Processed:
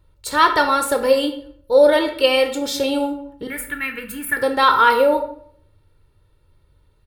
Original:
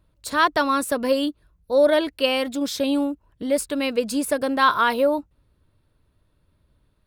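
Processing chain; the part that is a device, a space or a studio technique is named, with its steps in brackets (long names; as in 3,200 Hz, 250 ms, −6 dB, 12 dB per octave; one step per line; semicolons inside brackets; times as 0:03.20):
0:03.47–0:04.37: drawn EQ curve 200 Hz 0 dB, 580 Hz −25 dB, 1,700 Hz +10 dB, 5,000 Hz −23 dB, 15,000 Hz +6 dB
microphone above a desk (comb filter 2.2 ms, depth 60%; convolution reverb RT60 0.60 s, pre-delay 12 ms, DRR 5 dB)
level +2.5 dB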